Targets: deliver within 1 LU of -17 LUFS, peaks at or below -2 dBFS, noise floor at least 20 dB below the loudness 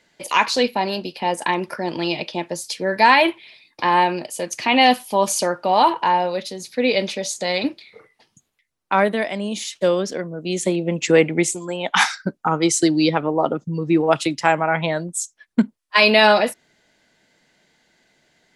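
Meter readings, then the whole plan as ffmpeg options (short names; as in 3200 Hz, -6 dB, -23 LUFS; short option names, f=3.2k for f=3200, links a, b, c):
loudness -19.5 LUFS; peak -1.0 dBFS; loudness target -17.0 LUFS
-> -af "volume=2.5dB,alimiter=limit=-2dB:level=0:latency=1"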